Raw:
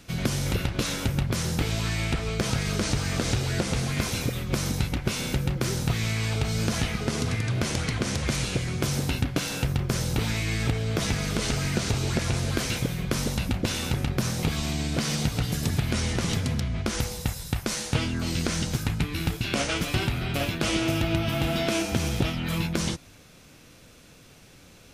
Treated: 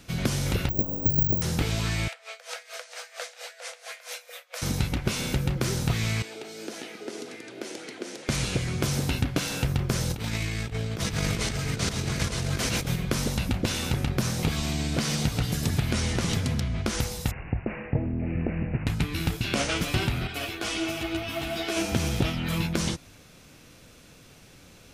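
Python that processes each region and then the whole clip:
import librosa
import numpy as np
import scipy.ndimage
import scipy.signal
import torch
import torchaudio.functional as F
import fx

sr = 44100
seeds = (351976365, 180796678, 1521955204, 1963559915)

y = fx.chain(x, sr, fx.cheby2_bandstop(low_hz=2400.0, high_hz=5600.0, order=4, stop_db=70),
    fx.spacing_loss(db_at_10k=32),
    fx.resample_bad(factor=2, down='none', up='zero_stuff'), at=(0.69, 1.42))
y = fx.chain(y, sr, fx.cheby_ripple_highpass(hz=470.0, ripple_db=6),
    fx.high_shelf(hz=5100.0, db=4.0),
    fx.tremolo_db(hz=4.4, depth_db=19), at=(2.08, 4.62))
y = fx.chain(y, sr, fx.ladder_highpass(hz=290.0, resonance_pct=50),
    fx.peak_eq(hz=1100.0, db=-7.5, octaves=0.25), at=(6.22, 8.29))
y = fx.chain(y, sr, fx.over_compress(threshold_db=-29.0, ratio=-0.5),
    fx.echo_single(ms=912, db=-4.5), at=(10.1, 12.96))
y = fx.chain(y, sr, fx.cheby2_bandstop(low_hz=1300.0, high_hz=5200.0, order=4, stop_db=40),
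    fx.resample_bad(factor=8, down='none', up='filtered'), at=(17.31, 18.87))
y = fx.chain(y, sr, fx.low_shelf(hz=300.0, db=-9.0),
    fx.comb(ms=2.7, depth=0.48),
    fx.ensemble(), at=(20.27, 21.77))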